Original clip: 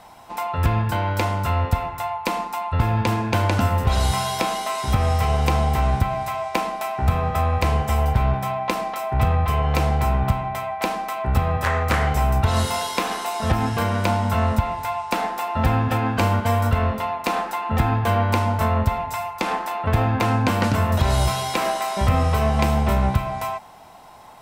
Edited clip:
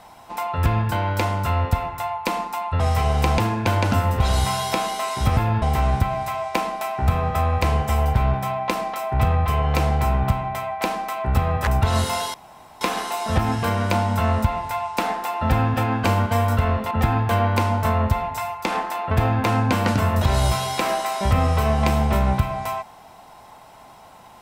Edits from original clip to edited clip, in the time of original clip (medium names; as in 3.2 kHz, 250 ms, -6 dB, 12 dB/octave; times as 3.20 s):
2.80–3.05 s: swap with 5.04–5.62 s
11.67–12.28 s: delete
12.95 s: insert room tone 0.47 s
17.05–17.67 s: delete